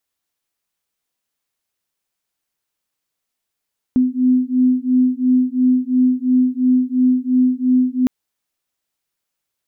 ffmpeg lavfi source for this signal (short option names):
-f lavfi -i "aevalsrc='0.168*(sin(2*PI*252*t)+sin(2*PI*254.9*t))':d=4.11:s=44100"